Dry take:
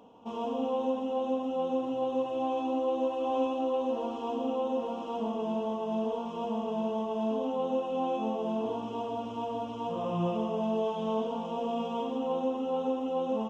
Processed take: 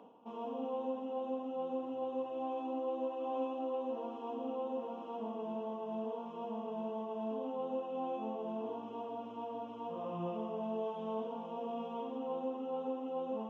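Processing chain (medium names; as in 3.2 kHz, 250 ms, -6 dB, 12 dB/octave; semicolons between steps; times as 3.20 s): three-band isolator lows -15 dB, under 160 Hz, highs -12 dB, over 2.9 kHz; reverse; upward compressor, threshold -37 dBFS; reverse; trim -7.5 dB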